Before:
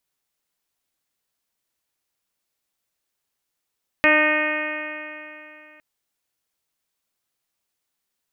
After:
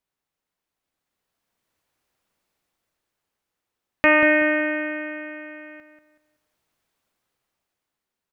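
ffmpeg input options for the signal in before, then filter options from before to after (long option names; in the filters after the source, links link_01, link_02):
-f lavfi -i "aevalsrc='0.0794*pow(10,-3*t/2.94)*sin(2*PI*303.13*t)+0.112*pow(10,-3*t/2.94)*sin(2*PI*607.05*t)+0.0447*pow(10,-3*t/2.94)*sin(2*PI*912.55*t)+0.0631*pow(10,-3*t/2.94)*sin(2*PI*1220.41*t)+0.0596*pow(10,-3*t/2.94)*sin(2*PI*1531.39*t)+0.158*pow(10,-3*t/2.94)*sin(2*PI*1846.25*t)+0.0891*pow(10,-3*t/2.94)*sin(2*PI*2165.74*t)+0.112*pow(10,-3*t/2.94)*sin(2*PI*2490.57*t)+0.0266*pow(10,-3*t/2.94)*sin(2*PI*2821.45*t)+0.00891*pow(10,-3*t/2.94)*sin(2*PI*3159.06*t)':duration=1.76:sample_rate=44100"
-filter_complex "[0:a]dynaudnorm=framelen=260:gausssize=11:maxgain=10.5dB,highshelf=frequency=3000:gain=-10.5,asplit=2[link_01][link_02];[link_02]adelay=188,lowpass=frequency=2200:poles=1,volume=-8dB,asplit=2[link_03][link_04];[link_04]adelay=188,lowpass=frequency=2200:poles=1,volume=0.34,asplit=2[link_05][link_06];[link_06]adelay=188,lowpass=frequency=2200:poles=1,volume=0.34,asplit=2[link_07][link_08];[link_08]adelay=188,lowpass=frequency=2200:poles=1,volume=0.34[link_09];[link_03][link_05][link_07][link_09]amix=inputs=4:normalize=0[link_10];[link_01][link_10]amix=inputs=2:normalize=0"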